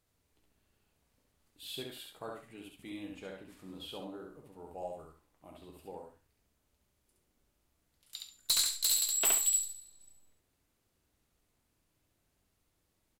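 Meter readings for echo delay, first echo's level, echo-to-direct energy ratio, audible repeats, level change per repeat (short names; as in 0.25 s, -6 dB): 68 ms, -3.0 dB, -3.0 dB, 2, -12.5 dB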